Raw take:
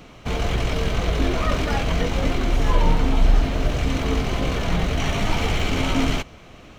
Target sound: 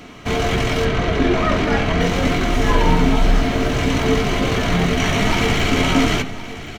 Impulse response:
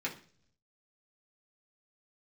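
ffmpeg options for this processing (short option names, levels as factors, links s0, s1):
-filter_complex "[0:a]asettb=1/sr,asplit=3[s0][s1][s2];[s0]atrim=end=0.854[s3];[s1]atrim=start=0.85:end=2.01,asetpts=PTS-STARTPTS,afade=t=in:d=0.004:c=qsin,afade=t=out:st=1.156:d=0.004:c=qsin,aemphasis=mode=reproduction:type=50fm[s4];[s2]atrim=start=2.006[s5];[s3][s4]acrossfade=d=0.004:c1=hsin:c2=qsin[s6];[s6][s5]acrossfade=d=0.004:c1=qsin:c2=hsin,aecho=1:1:1070:0.178,asplit=2[s7][s8];[1:a]atrim=start_sample=2205,asetrate=38367,aresample=44100[s9];[s8][s9]afir=irnorm=-1:irlink=0,volume=0.531[s10];[s7][s10]amix=inputs=2:normalize=0,volume=1.41"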